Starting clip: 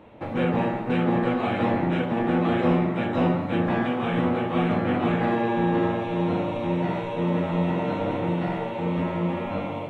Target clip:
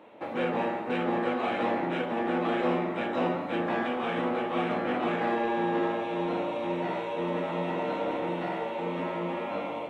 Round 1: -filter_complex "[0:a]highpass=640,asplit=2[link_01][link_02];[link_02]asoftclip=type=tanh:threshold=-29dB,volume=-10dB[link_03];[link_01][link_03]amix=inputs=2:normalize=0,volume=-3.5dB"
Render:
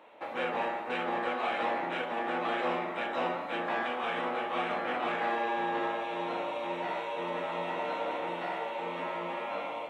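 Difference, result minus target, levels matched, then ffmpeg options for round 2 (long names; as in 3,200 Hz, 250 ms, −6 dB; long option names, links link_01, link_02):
250 Hz band −6.5 dB
-filter_complex "[0:a]highpass=310,asplit=2[link_01][link_02];[link_02]asoftclip=type=tanh:threshold=-29dB,volume=-10dB[link_03];[link_01][link_03]amix=inputs=2:normalize=0,volume=-3.5dB"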